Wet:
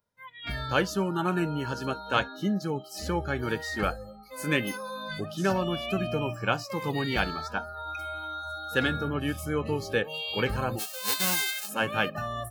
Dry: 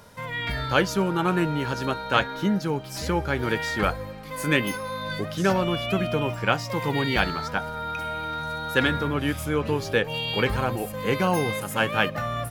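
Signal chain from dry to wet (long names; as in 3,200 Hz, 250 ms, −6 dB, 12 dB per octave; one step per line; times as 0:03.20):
0:10.78–0:11.68: spectral envelope flattened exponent 0.1
noise reduction from a noise print of the clip's start 29 dB
level −4 dB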